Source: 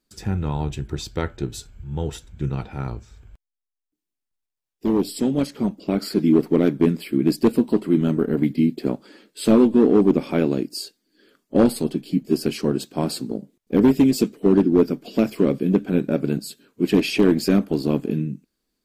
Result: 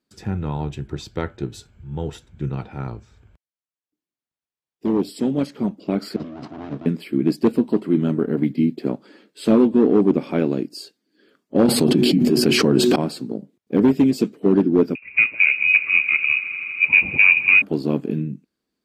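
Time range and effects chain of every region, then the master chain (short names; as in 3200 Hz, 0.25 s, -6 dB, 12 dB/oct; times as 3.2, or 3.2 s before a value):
6.16–6.86 minimum comb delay 1 ms + negative-ratio compressor -28 dBFS + speaker cabinet 150–6600 Hz, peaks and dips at 180 Hz -9 dB, 530 Hz -9 dB, 850 Hz -5 dB, 2000 Hz -5 dB
11.68–12.96 de-hum 122.3 Hz, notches 3 + fast leveller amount 100%
14.95–17.62 tilt -2 dB/oct + swelling echo 80 ms, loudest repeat 5, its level -18 dB + inverted band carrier 2700 Hz
whole clip: HPF 83 Hz; high shelf 5500 Hz -10.5 dB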